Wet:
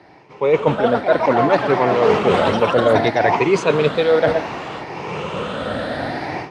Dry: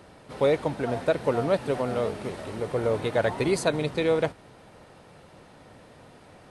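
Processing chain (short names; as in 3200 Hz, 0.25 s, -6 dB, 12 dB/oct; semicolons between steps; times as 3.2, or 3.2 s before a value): moving spectral ripple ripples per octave 0.76, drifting +0.64 Hz, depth 10 dB; on a send at -20.5 dB: reverb RT60 0.25 s, pre-delay 0.102 s; on the sum: AGC gain up to 16 dB; HPF 220 Hz 6 dB/oct; reverse; compressor 8:1, threshold -26 dBFS, peak gain reduction 17.5 dB; reverse; echoes that change speed 0.506 s, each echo +7 st, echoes 2, each echo -6 dB; LPF 3600 Hz 12 dB/oct; maximiser +16.5 dB; three-band expander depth 40%; gain -3 dB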